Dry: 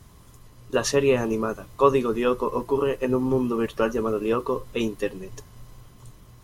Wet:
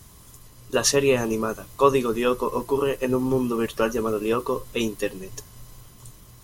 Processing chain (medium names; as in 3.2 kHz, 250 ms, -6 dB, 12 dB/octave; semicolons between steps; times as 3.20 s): treble shelf 4.1 kHz +10.5 dB